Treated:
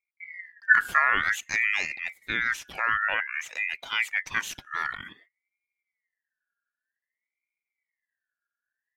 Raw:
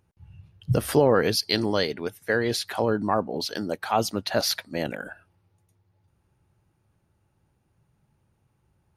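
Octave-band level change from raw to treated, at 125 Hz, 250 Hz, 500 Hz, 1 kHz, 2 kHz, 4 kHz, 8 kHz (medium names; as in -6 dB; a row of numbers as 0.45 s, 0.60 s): -22.0 dB, -20.5 dB, -22.0 dB, -1.0 dB, +10.0 dB, -7.5 dB, -6.0 dB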